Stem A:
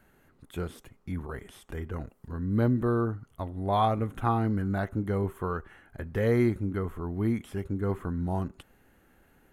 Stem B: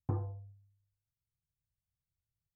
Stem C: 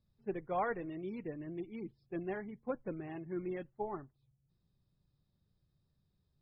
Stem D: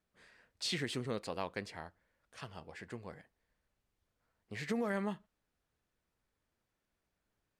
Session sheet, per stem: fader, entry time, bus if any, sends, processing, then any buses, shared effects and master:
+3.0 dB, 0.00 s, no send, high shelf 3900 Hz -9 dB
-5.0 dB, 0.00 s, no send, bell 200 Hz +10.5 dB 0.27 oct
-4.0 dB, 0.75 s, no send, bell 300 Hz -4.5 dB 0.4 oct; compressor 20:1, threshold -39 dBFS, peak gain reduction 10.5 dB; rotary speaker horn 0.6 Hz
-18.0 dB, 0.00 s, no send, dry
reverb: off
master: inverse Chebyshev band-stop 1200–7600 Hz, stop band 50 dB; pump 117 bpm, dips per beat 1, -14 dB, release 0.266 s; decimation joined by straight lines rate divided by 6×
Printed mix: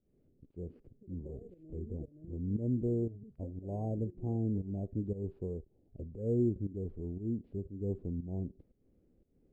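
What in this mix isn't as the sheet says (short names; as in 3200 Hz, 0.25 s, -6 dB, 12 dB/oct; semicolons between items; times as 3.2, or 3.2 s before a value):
stem A +3.0 dB -> -5.0 dB; stem B: muted; stem D: muted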